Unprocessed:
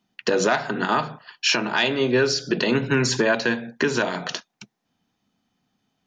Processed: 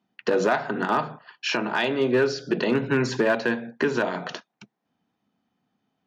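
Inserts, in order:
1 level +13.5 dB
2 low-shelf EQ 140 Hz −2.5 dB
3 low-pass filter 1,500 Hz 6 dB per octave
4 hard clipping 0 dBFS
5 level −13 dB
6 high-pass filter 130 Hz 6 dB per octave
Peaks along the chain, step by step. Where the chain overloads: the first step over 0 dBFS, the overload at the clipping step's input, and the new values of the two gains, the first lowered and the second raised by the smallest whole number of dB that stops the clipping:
+6.0, +6.0, +3.5, 0.0, −13.0, −11.5 dBFS
step 1, 3.5 dB
step 1 +9.5 dB, step 5 −9 dB

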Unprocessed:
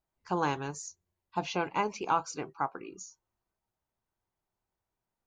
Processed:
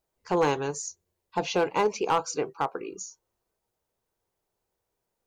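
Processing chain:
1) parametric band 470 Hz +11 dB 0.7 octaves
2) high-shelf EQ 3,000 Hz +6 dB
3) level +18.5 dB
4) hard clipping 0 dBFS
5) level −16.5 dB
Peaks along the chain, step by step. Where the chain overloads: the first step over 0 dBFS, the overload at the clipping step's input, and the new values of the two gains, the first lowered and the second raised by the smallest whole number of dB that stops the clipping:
−12.0, −11.5, +7.0, 0.0, −16.5 dBFS
step 3, 7.0 dB
step 3 +11.5 dB, step 5 −9.5 dB

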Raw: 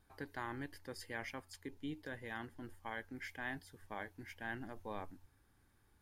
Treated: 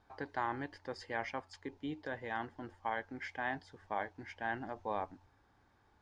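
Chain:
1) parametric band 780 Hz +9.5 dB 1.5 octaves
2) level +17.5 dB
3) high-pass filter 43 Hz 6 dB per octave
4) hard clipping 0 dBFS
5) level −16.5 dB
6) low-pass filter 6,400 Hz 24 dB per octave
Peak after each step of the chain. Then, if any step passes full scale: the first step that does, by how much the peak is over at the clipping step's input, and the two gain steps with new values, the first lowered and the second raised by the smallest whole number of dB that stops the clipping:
−23.0, −5.5, −5.5, −5.5, −22.0, −22.0 dBFS
no step passes full scale

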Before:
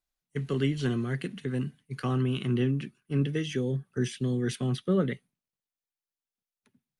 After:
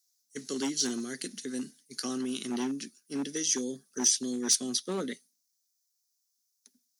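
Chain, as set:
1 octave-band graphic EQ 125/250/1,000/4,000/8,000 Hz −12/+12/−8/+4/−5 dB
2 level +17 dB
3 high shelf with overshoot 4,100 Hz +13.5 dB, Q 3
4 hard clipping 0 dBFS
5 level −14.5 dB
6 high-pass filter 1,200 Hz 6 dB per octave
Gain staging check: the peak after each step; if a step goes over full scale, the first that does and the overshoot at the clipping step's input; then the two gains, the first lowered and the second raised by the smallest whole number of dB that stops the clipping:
−12.0, +5.0, +6.5, 0.0, −14.5, −13.5 dBFS
step 2, 6.5 dB
step 2 +10 dB, step 5 −7.5 dB

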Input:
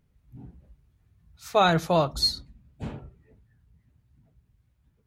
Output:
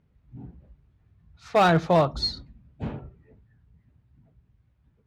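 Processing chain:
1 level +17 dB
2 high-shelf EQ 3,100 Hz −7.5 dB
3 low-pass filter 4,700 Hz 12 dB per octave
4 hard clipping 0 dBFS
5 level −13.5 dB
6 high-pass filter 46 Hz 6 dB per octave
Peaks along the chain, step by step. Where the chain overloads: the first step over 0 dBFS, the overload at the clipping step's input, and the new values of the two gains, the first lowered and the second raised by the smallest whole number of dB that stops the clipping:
+8.0, +7.0, +7.0, 0.0, −13.5, −12.0 dBFS
step 1, 7.0 dB
step 1 +10 dB, step 5 −6.5 dB

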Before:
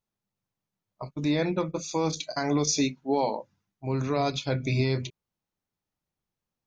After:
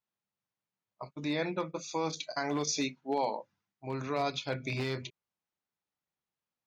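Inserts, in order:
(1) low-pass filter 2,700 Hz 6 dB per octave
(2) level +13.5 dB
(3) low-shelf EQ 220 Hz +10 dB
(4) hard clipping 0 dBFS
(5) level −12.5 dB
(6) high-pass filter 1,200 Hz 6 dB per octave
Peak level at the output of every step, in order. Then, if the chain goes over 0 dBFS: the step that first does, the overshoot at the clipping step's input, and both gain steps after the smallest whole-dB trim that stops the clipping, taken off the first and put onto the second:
−15.0, −1.5, +4.0, 0.0, −12.5, −19.0 dBFS
step 3, 4.0 dB
step 2 +9.5 dB, step 5 −8.5 dB

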